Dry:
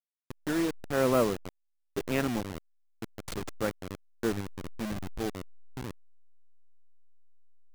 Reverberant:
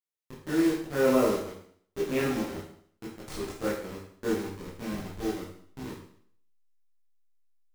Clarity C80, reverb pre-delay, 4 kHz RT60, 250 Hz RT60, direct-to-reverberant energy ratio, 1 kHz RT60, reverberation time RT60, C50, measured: 7.5 dB, 15 ms, 0.60 s, 0.60 s, -7.0 dB, 0.60 s, 0.60 s, 3.0 dB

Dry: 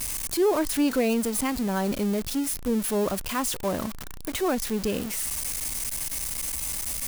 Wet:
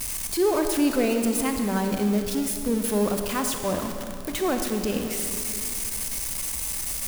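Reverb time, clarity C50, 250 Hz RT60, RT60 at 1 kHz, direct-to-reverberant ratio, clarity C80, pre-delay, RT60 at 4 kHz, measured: 2.4 s, 5.5 dB, 3.0 s, 2.3 s, 4.5 dB, 6.5 dB, 34 ms, 2.0 s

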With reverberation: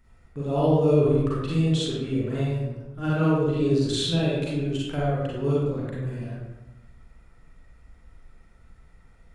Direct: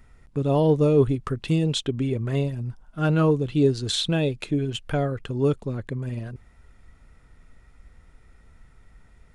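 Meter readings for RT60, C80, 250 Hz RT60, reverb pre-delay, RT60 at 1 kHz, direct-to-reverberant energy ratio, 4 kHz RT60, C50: 1.0 s, 1.0 dB, 1.1 s, 35 ms, 1.0 s, -7.5 dB, 0.65 s, -3.5 dB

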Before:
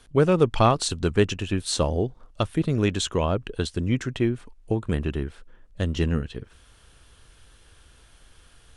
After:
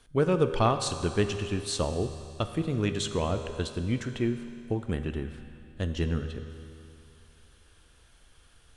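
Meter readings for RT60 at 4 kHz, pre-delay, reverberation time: 2.6 s, 4 ms, 2.6 s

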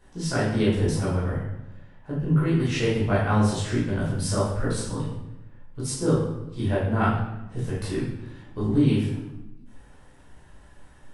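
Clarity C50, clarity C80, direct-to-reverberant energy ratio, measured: 1.5 dB, 5.0 dB, -9.0 dB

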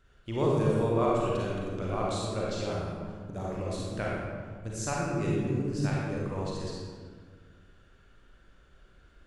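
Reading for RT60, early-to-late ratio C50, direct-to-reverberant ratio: 1.7 s, -3.0 dB, -5.0 dB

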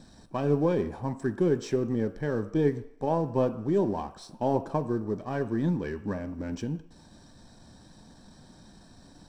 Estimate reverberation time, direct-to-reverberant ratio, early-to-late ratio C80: no single decay rate, 8.5 dB, 16.5 dB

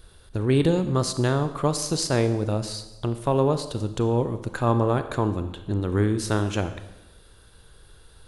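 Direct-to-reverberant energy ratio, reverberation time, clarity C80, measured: 10.0 dB, 1.0 s, 13.0 dB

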